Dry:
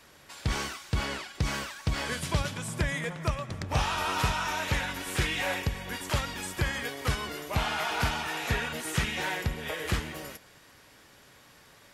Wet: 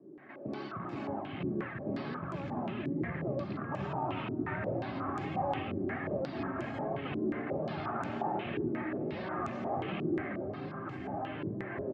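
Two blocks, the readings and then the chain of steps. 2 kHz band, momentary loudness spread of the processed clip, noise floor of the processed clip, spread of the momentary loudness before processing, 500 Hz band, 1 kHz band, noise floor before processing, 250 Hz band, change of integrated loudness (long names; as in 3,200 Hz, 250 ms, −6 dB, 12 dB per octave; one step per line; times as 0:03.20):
−11.0 dB, 5 LU, −42 dBFS, 6 LU, +1.5 dB, −3.5 dB, −56 dBFS, +3.0 dB, −5.5 dB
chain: loose part that buzzes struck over −30 dBFS, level −20 dBFS
high-pass filter 180 Hz 24 dB per octave
tilt shelving filter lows +8.5 dB, about 780 Hz
in parallel at −1 dB: downward compressor, threshold −45 dBFS, peak gain reduction 20.5 dB
on the sum: brickwall limiter −25 dBFS, peak gain reduction 11 dB
delay with pitch and tempo change per echo 219 ms, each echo −3 semitones, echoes 3
notch comb filter 480 Hz
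flanger 1.3 Hz, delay 1.7 ms, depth 1.7 ms, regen −54%
high-frequency loss of the air 410 metres
single-tap delay 317 ms −12 dB
low-pass on a step sequencer 5.6 Hz 350–7,100 Hz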